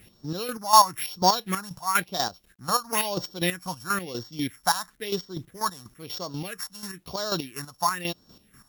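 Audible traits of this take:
a buzz of ramps at a fixed pitch in blocks of 8 samples
phaser sweep stages 4, 1 Hz, lowest notch 370–2,300 Hz
a quantiser's noise floor 12 bits, dither none
chopped level 4.1 Hz, depth 65%, duty 35%

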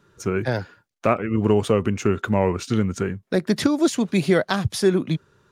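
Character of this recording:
background noise floor −67 dBFS
spectral slope −6.0 dB per octave

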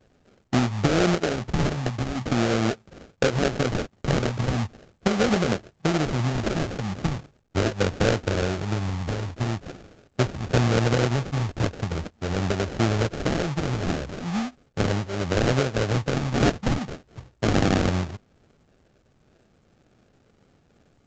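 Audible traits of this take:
phaser sweep stages 12, 0.41 Hz, lowest notch 370–3,800 Hz
aliases and images of a low sample rate 1,000 Hz, jitter 20%
A-law companding

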